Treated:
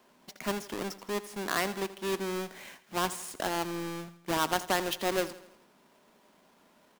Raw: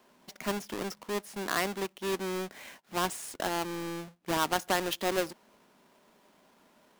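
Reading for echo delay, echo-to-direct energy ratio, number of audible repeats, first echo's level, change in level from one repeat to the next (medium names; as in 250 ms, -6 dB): 82 ms, -14.5 dB, 4, -16.0 dB, -6.0 dB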